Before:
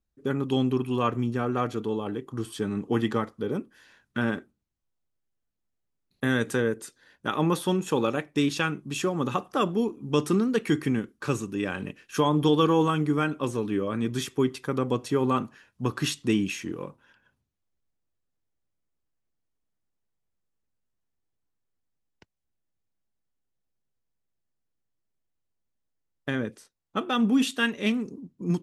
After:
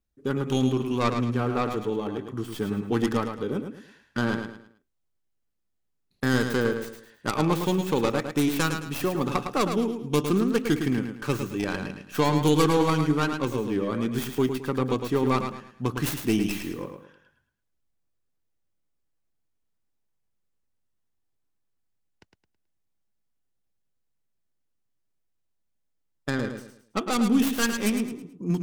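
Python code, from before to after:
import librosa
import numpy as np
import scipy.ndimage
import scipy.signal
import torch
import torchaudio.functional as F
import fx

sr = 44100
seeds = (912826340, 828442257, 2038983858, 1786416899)

y = fx.tracing_dist(x, sr, depth_ms=0.43)
y = fx.echo_feedback(y, sr, ms=108, feedback_pct=33, wet_db=-7.0)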